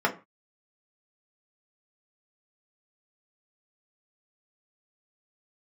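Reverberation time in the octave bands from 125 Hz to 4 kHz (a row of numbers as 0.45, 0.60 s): 0.40, 0.30, 0.25, 0.35, 0.25, 0.20 s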